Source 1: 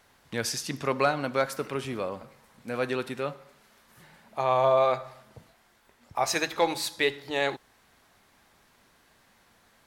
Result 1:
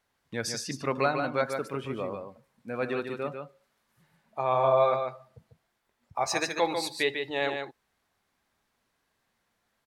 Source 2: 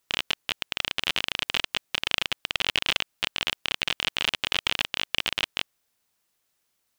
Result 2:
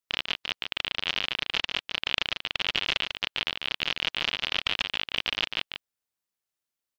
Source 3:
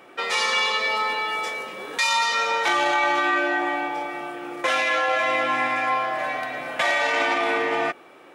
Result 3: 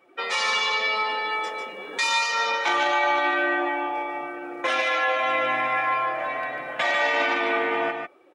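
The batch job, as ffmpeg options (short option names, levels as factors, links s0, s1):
-af "afftdn=nr=13:nf=-39,aecho=1:1:146:0.501,volume=0.794"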